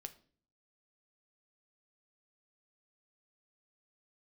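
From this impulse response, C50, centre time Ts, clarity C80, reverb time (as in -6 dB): 16.5 dB, 5 ms, 20.5 dB, 0.45 s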